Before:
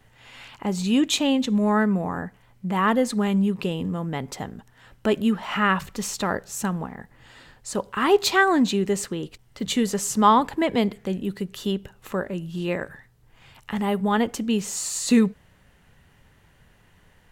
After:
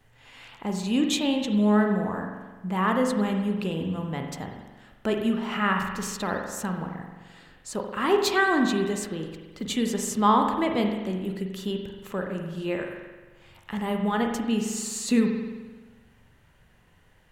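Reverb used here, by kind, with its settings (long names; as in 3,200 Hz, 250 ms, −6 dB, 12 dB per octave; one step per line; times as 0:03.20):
spring reverb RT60 1.3 s, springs 43 ms, chirp 60 ms, DRR 3 dB
level −4.5 dB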